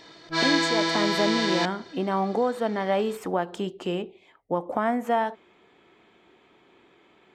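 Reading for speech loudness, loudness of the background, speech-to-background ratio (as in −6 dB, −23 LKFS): −28.0 LKFS, −24.5 LKFS, −3.5 dB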